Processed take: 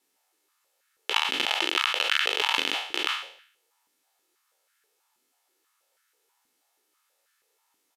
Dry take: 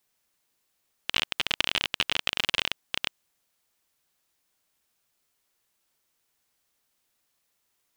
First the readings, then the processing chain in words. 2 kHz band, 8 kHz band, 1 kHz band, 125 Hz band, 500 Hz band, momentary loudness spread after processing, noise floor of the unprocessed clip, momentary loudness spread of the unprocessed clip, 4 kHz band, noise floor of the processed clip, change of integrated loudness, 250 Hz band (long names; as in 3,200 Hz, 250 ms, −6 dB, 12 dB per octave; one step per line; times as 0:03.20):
+3.5 dB, +2.0 dB, +7.5 dB, below −10 dB, +6.0 dB, 8 LU, −76 dBFS, 7 LU, +2.0 dB, −74 dBFS, +2.5 dB, +4.0 dB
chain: peak hold with a decay on every bin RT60 0.58 s
comb filter 2.3 ms, depth 38%
downsampling to 32,000 Hz
brickwall limiter −8 dBFS, peak gain reduction 7 dB
high-pass on a step sequencer 6.2 Hz 260–1,500 Hz